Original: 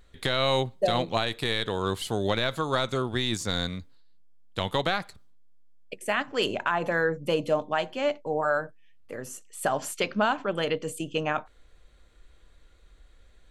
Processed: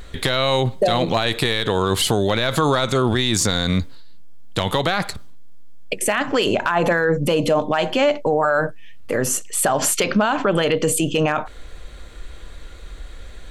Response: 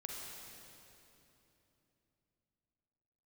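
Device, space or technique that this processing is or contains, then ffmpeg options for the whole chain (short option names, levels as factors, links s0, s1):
loud club master: -af "acompressor=threshold=0.0398:ratio=2,asoftclip=type=hard:threshold=0.119,alimiter=level_in=23.7:limit=0.891:release=50:level=0:latency=1,volume=0.398"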